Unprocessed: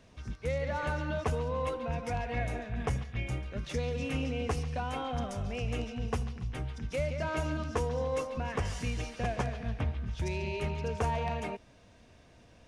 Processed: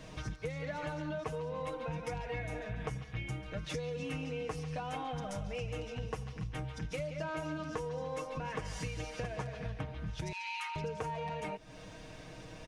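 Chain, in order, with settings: 10.32–10.76 s: steep high-pass 860 Hz 96 dB/octave; comb 6.4 ms, depth 76%; compression 6:1, threshold -45 dBFS, peak gain reduction 19.5 dB; trim +8 dB

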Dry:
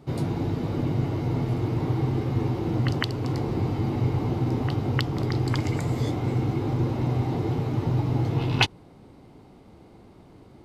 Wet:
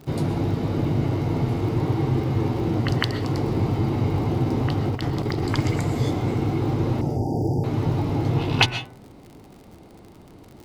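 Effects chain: de-hum 124.5 Hz, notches 19; 4.89–5.52 s: compressor with a negative ratio -28 dBFS, ratio -0.5; crackle 61 per s -40 dBFS; 7.01–7.64 s: brick-wall FIR band-stop 930–4600 Hz; reverberation RT60 0.35 s, pre-delay 85 ms, DRR 11 dB; trim +3.5 dB

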